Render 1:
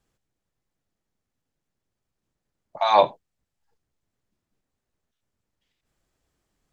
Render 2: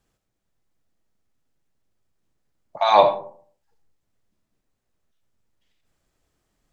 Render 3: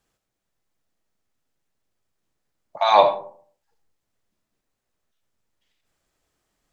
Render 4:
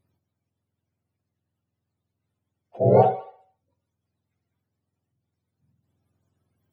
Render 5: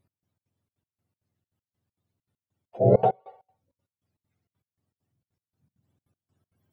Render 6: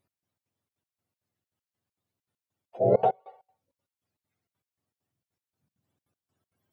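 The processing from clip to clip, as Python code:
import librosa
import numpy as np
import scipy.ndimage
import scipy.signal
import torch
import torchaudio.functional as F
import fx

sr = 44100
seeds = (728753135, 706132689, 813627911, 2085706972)

y1 = fx.rev_freeverb(x, sr, rt60_s=0.51, hf_ratio=0.4, predelay_ms=20, drr_db=8.0)
y1 = y1 * librosa.db_to_amplitude(2.0)
y2 = fx.low_shelf(y1, sr, hz=330.0, db=-7.0)
y2 = y2 * librosa.db_to_amplitude(1.0)
y3 = fx.octave_mirror(y2, sr, pivot_hz=670.0)
y4 = fx.step_gate(y3, sr, bpm=198, pattern='x..xx.xxx.', floor_db=-24.0, edge_ms=4.5)
y5 = fx.low_shelf(y4, sr, hz=250.0, db=-11.5)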